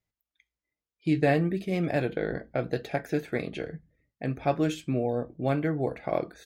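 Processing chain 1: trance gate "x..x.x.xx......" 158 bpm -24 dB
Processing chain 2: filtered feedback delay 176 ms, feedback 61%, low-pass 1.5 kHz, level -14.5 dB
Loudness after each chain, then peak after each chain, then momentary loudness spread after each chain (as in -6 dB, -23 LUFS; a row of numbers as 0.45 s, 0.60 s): -33.5 LUFS, -29.0 LUFS; -13.5 dBFS, -11.0 dBFS; 14 LU, 10 LU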